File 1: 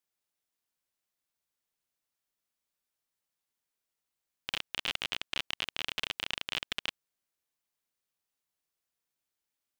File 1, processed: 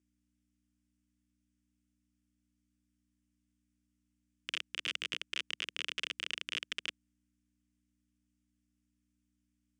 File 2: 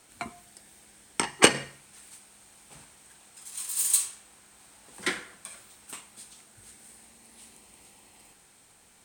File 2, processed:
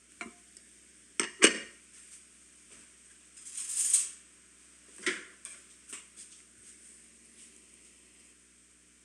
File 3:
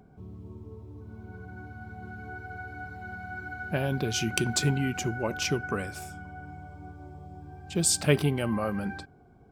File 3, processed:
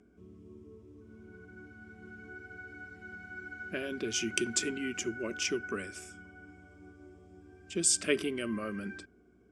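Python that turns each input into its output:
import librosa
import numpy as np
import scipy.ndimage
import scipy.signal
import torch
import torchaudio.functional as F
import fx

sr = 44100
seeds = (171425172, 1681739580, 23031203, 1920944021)

y = fx.add_hum(x, sr, base_hz=60, snr_db=24)
y = fx.cabinet(y, sr, low_hz=130.0, low_slope=12, high_hz=9300.0, hz=(270.0, 500.0, 4100.0), db=(-5, -7, -10))
y = fx.fixed_phaser(y, sr, hz=340.0, stages=4)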